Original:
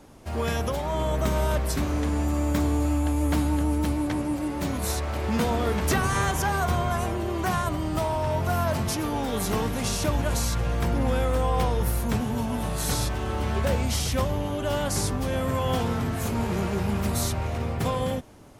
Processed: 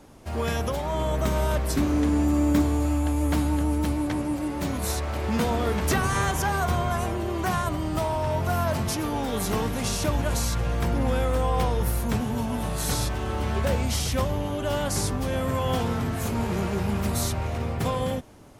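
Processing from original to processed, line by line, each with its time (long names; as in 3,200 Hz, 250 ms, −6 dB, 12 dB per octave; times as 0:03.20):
0:01.69–0:02.62: parametric band 290 Hz +6.5 dB 0.76 octaves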